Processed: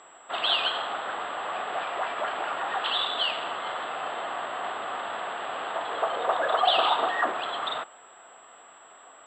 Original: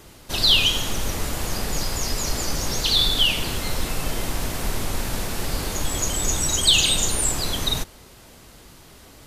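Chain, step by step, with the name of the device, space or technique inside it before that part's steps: toy sound module (decimation joined by straight lines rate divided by 6×; class-D stage that switches slowly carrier 7.7 kHz; cabinet simulation 700–3600 Hz, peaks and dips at 710 Hz +8 dB, 1.2 kHz +6 dB, 2.3 kHz -9 dB, 3.5 kHz +4 dB)

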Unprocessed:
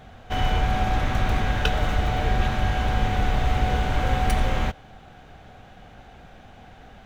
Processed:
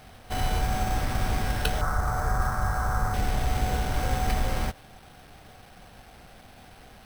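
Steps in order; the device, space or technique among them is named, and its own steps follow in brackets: early 8-bit sampler (sample-rate reducer 7 kHz, jitter 0%; bit crusher 8-bit); 1.81–3.14 s: FFT filter 150 Hz 0 dB, 260 Hz -7 dB, 760 Hz +1 dB, 1.3 kHz +11 dB, 2.8 kHz -19 dB, 5.9 kHz -2 dB; trim -4 dB

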